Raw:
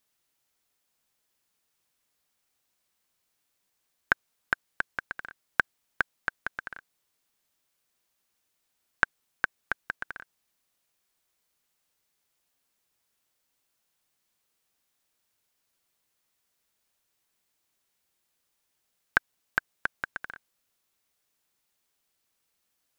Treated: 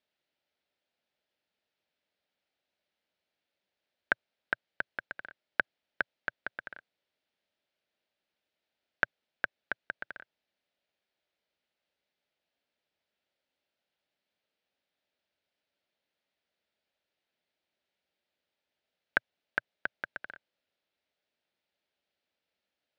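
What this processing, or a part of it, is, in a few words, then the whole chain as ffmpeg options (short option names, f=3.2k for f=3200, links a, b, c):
guitar cabinet: -af "highpass=78,equalizer=f=120:t=q:w=4:g=-10,equalizer=f=590:t=q:w=4:g=7,equalizer=f=1.1k:t=q:w=4:g=-9,lowpass=f=4.2k:w=0.5412,lowpass=f=4.2k:w=1.3066,volume=-3dB"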